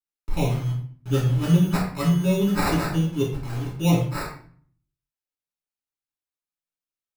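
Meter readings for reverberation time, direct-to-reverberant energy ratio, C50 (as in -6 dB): 0.45 s, -5.5 dB, 4.0 dB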